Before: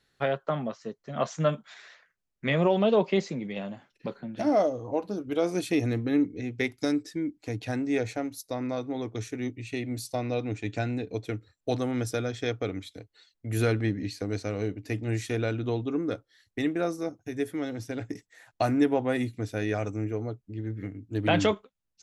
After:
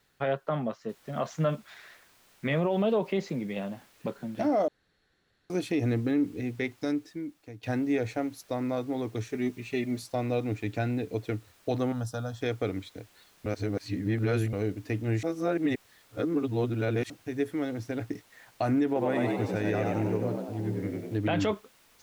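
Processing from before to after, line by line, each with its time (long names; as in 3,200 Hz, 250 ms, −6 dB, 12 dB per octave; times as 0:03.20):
0:00.89: noise floor change −69 dB −57 dB
0:04.68–0:05.50: fill with room tone
0:06.48–0:07.63: fade out, to −16 dB
0:09.29–0:10.03: comb filter 5 ms
0:11.92–0:12.41: phaser with its sweep stopped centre 910 Hz, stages 4
0:13.46–0:14.53: reverse
0:15.23–0:17.10: reverse
0:18.86–0:21.17: echo with shifted repeats 96 ms, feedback 52%, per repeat +75 Hz, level −3.5 dB
whole clip: high-shelf EQ 4,600 Hz −9.5 dB; brickwall limiter −19.5 dBFS; level +1 dB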